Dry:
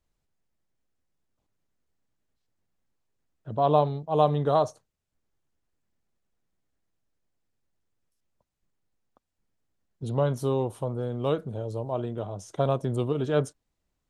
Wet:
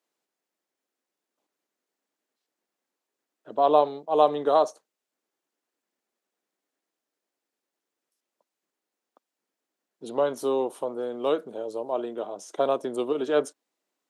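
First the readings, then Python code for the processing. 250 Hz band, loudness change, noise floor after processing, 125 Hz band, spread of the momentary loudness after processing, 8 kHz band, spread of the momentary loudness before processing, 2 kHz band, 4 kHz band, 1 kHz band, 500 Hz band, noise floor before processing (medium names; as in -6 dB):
-1.5 dB, +1.0 dB, under -85 dBFS, -21.5 dB, 13 LU, no reading, 11 LU, +2.5 dB, +2.5 dB, +2.5 dB, +2.5 dB, -81 dBFS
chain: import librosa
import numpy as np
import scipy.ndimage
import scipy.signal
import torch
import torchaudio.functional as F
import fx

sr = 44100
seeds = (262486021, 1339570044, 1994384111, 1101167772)

y = scipy.signal.sosfilt(scipy.signal.butter(4, 280.0, 'highpass', fs=sr, output='sos'), x)
y = y * librosa.db_to_amplitude(2.5)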